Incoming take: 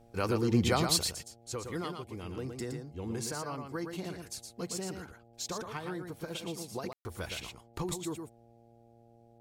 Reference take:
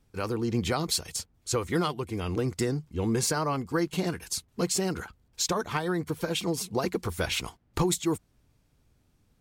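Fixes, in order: de-hum 116.6 Hz, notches 7; room tone fill 6.93–7.05; inverse comb 0.116 s -6 dB; gain 0 dB, from 1.11 s +10.5 dB

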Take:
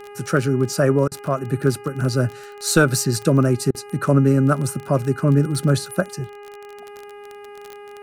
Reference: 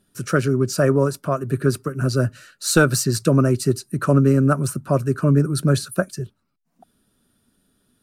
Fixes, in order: de-click; de-hum 409.8 Hz, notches 7; interpolate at 1.08/3.71, 35 ms

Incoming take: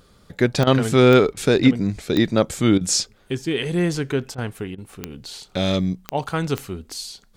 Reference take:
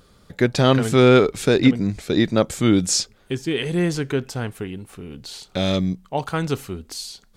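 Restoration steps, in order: de-click; interpolate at 0.64/1.34/2.78/4.35/4.75, 29 ms

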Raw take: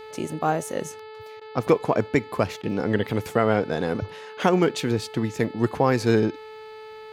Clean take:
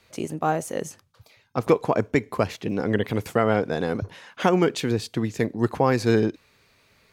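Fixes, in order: de-hum 434.9 Hz, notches 11; interpolate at 1.4/2.62, 12 ms

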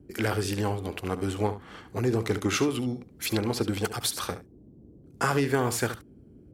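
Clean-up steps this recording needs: noise print and reduce 21 dB; inverse comb 71 ms -12.5 dB

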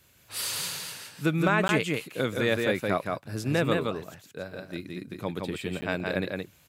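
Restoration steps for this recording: interpolate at 1.68/5.81, 10 ms; inverse comb 0.169 s -3.5 dB

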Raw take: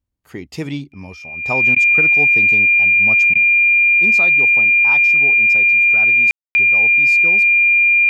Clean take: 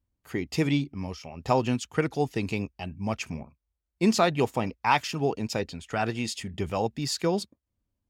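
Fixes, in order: notch 2400 Hz, Q 30; room tone fill 6.31–6.55; interpolate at 1.75/3.34, 12 ms; gain correction +6.5 dB, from 3.38

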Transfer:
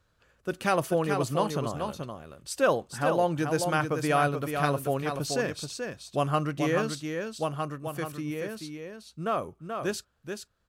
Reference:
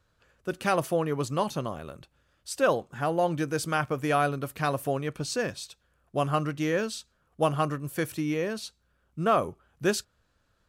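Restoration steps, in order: inverse comb 0.432 s -6 dB; gain 0 dB, from 6.95 s +5.5 dB

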